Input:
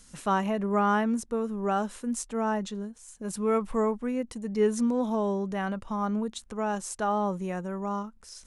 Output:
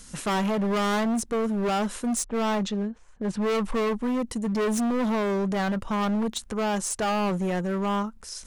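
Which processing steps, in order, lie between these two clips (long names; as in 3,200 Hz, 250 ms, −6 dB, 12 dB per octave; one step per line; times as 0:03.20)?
0:02.24–0:03.84: low-pass that shuts in the quiet parts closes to 1,100 Hz, open at −23.5 dBFS
hard clipping −31 dBFS, distortion −6 dB
level +8 dB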